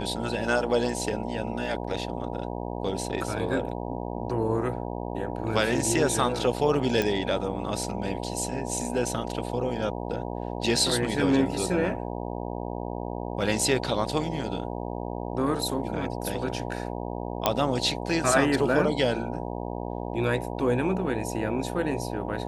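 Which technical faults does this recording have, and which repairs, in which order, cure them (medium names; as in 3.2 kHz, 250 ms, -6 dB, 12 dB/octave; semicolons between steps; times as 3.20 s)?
buzz 60 Hz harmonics 16 -33 dBFS
7.02 s: pop -12 dBFS
17.46 s: pop -6 dBFS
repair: de-click; de-hum 60 Hz, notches 16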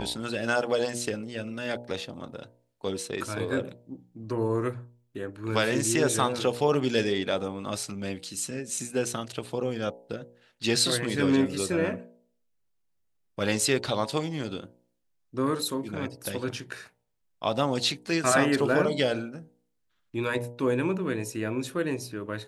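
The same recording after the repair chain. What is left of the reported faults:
nothing left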